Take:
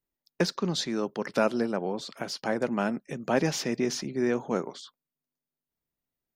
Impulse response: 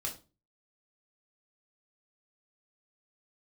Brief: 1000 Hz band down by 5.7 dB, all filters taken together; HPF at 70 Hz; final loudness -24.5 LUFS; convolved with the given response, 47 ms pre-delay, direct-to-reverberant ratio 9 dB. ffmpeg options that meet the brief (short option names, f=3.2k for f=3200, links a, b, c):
-filter_complex "[0:a]highpass=70,equalizer=f=1k:t=o:g=-8.5,asplit=2[a][b];[1:a]atrim=start_sample=2205,adelay=47[c];[b][c]afir=irnorm=-1:irlink=0,volume=-10dB[d];[a][d]amix=inputs=2:normalize=0,volume=6dB"